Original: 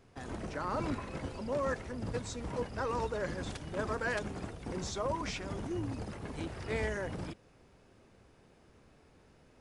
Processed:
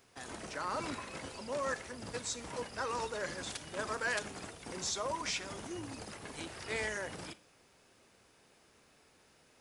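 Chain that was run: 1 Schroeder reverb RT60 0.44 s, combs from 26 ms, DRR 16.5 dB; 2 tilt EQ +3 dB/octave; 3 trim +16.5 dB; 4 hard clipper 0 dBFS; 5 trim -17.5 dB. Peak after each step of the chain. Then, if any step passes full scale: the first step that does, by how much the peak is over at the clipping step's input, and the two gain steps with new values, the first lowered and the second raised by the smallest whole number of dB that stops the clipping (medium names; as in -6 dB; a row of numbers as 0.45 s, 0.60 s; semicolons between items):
-20.5 dBFS, -21.0 dBFS, -4.5 dBFS, -4.5 dBFS, -22.0 dBFS; nothing clips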